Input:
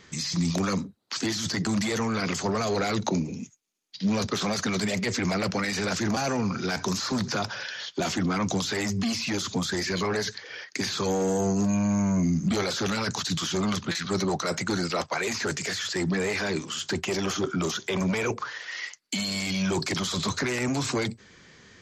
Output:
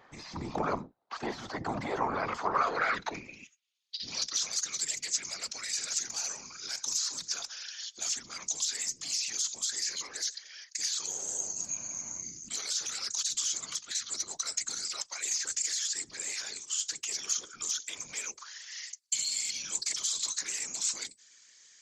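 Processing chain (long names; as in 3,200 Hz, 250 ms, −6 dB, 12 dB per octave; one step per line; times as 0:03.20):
band-pass filter sweep 800 Hz → 7,200 Hz, 0:02.14–0:04.56
random phases in short frames
level +6.5 dB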